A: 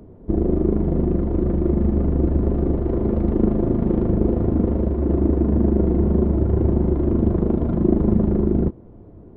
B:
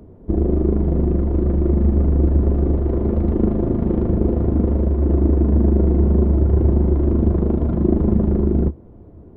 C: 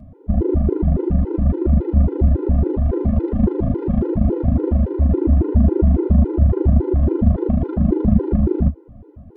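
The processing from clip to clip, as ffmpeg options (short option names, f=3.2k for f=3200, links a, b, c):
-af "equalizer=f=72:t=o:w=0.34:g=6"
-af "afftfilt=real='re*gt(sin(2*PI*3.6*pts/sr)*(1-2*mod(floor(b*sr/1024/260),2)),0)':imag='im*gt(sin(2*PI*3.6*pts/sr)*(1-2*mod(floor(b*sr/1024/260),2)),0)':win_size=1024:overlap=0.75,volume=3.5dB"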